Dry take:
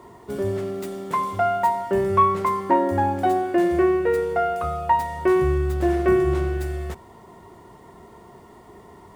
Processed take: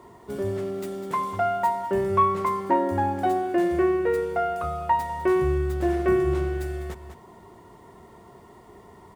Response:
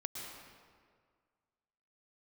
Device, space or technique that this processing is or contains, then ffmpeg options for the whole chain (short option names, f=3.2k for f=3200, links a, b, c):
ducked delay: -filter_complex "[0:a]asplit=3[a][b][c];[b]adelay=200,volume=-9dB[d];[c]apad=whole_len=412696[e];[d][e]sidechaincompress=threshold=-31dB:ratio=8:attack=16:release=296[f];[a][f]amix=inputs=2:normalize=0,volume=-3dB"